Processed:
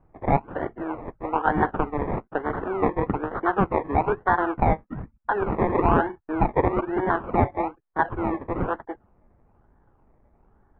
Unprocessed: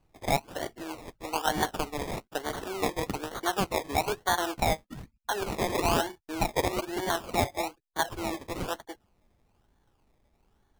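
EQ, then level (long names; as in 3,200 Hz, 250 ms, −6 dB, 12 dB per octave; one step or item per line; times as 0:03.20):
inverse Chebyshev low-pass filter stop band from 8,500 Hz, stop band 80 dB
dynamic equaliser 640 Hz, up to −6 dB, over −42 dBFS, Q 3.1
+8.5 dB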